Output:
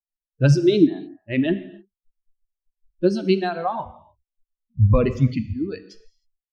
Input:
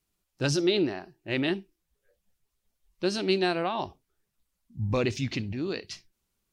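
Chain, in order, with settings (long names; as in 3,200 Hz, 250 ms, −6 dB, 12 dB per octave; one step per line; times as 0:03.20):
spectral dynamics exaggerated over time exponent 2
spectral tilt −4 dB per octave
harmonic and percussive parts rebalanced percussive +5 dB
reverb reduction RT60 0.94 s
reverb whose tail is shaped and stops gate 330 ms falling, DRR 11 dB
level +4.5 dB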